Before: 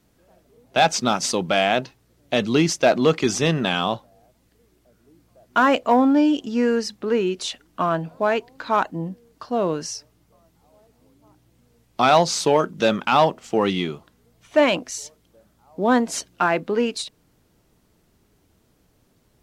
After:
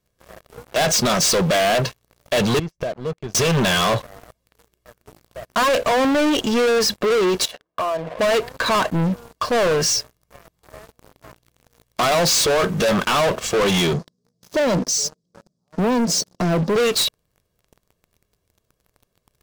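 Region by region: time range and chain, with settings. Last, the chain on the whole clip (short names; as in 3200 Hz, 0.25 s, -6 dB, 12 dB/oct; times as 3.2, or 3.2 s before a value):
2.59–3.35 RIAA curve playback + flipped gate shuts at -21 dBFS, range -31 dB
7.45–8.19 compressor 10:1, threshold -32 dBFS + band-pass 670 Hz, Q 1
13.93–16.76 EQ curve 100 Hz 0 dB, 160 Hz +12 dB, 640 Hz -8 dB, 2500 Hz -26 dB, 5000 Hz +7 dB + compressor 2:1, threshold -23 dBFS + BPF 190–3900 Hz
whole clip: comb 1.8 ms, depth 61%; limiter -13.5 dBFS; sample leveller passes 5; gain -1.5 dB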